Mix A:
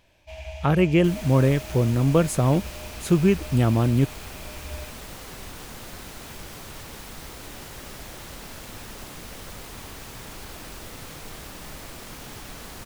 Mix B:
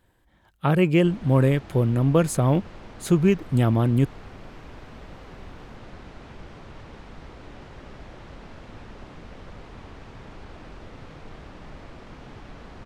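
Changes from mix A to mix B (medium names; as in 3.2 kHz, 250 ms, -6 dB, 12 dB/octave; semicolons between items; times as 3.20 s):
first sound: muted; second sound: add tape spacing loss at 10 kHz 30 dB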